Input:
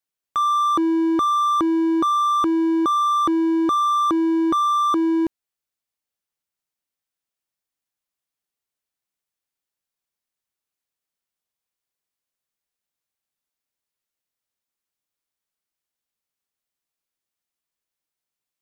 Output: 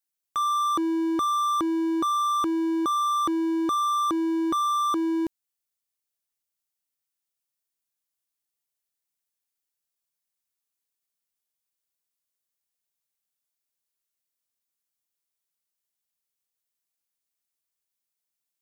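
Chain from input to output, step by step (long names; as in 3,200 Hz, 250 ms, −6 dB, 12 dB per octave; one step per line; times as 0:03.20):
high-shelf EQ 4,500 Hz +10 dB
level −6 dB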